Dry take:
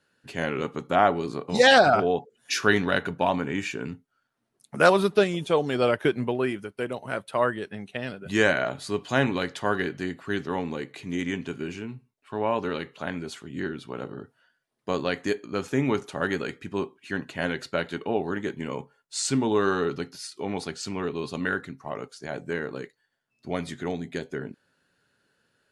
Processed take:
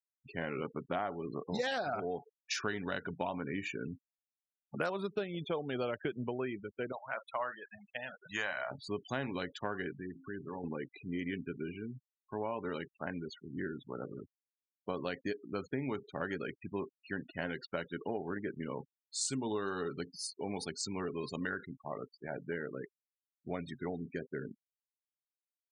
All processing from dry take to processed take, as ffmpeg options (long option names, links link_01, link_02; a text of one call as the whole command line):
ffmpeg -i in.wav -filter_complex "[0:a]asettb=1/sr,asplit=3[link_01][link_02][link_03];[link_01]atrim=end=6.924[link_04];[link_02]atrim=start=6.92:end=8.71,asetpts=PTS-STARTPTS,afade=type=in:duration=0.004:curve=qsin,afade=type=out:start_time=1.786:duration=0.004:curve=qsin,lowshelf=frequency=550:width_type=q:width=1.5:gain=-10.5,asplit=2[link_05][link_06];[link_06]adelay=44,volume=-13.5dB[link_07];[link_05][link_07]amix=inputs=2:normalize=0,atrim=end_sample=78939[link_08];[link_03]atrim=start=8.706[link_09];[link_04][link_08]acrossfade=duration=0.004:curve1=hsin:curve2=qsin[link_10];[link_10][link_09]acrossfade=duration=0.004:curve1=qsin:curve2=hsin,asettb=1/sr,asplit=3[link_11][link_12][link_13];[link_11]atrim=end=9.934[link_14];[link_12]atrim=start=9.93:end=10.64,asetpts=PTS-STARTPTS,afade=type=in:duration=0.004:curve=qsin,afade=type=out:start_time=0.706:duration=0.004:curve=qsin,highshelf=frequency=4100:gain=-10.5,bandreject=frequency=53.58:width_type=h:width=4,bandreject=frequency=107.16:width_type=h:width=4,bandreject=frequency=160.74:width_type=h:width=4,bandreject=frequency=214.32:width_type=h:width=4,bandreject=frequency=267.9:width_type=h:width=4,bandreject=frequency=321.48:width_type=h:width=4,bandreject=frequency=375.06:width_type=h:width=4,bandreject=frequency=428.64:width_type=h:width=4,bandreject=frequency=482.22:width_type=h:width=4,bandreject=frequency=535.8:width_type=h:width=4,bandreject=frequency=589.38:width_type=h:width=4,bandreject=frequency=642.96:width_type=h:width=4,bandreject=frequency=696.54:width_type=h:width=4,bandreject=frequency=750.12:width_type=h:width=4,bandreject=frequency=803.7:width_type=h:width=4,bandreject=frequency=857.28:width_type=h:width=4,acompressor=threshold=-33dB:ratio=2.5:attack=3.2:release=140:knee=1:detection=peak[link_15];[link_13]atrim=start=10.636[link_16];[link_14][link_15]acrossfade=duration=0.004:curve1=hsin:curve2=qsin[link_17];[link_17][link_16]acrossfade=duration=0.004:curve1=qsin:curve2=hsin,asettb=1/sr,asplit=3[link_18][link_19][link_20];[link_18]atrim=end=19.214[link_21];[link_19]atrim=start=19.21:end=21.66,asetpts=PTS-STARTPTS,afade=type=in:duration=0.004:curve=qsin,afade=type=out:start_time=2.446:duration=0.004:curve=qsin,highshelf=frequency=5000:gain=9,aecho=1:1:75:0.0841,atrim=end_sample=108045[link_22];[link_20]atrim=start=21.656[link_23];[link_21][link_22]acrossfade=duration=0.004:curve1=hsin:curve2=qsin[link_24];[link_24][link_23]acrossfade=duration=0.004:curve1=qsin:curve2=hsin,afftfilt=real='re*gte(hypot(re,im),0.0224)':imag='im*gte(hypot(re,im),0.0224)':win_size=1024:overlap=0.75,acompressor=threshold=-26dB:ratio=6,volume=-6.5dB" out.wav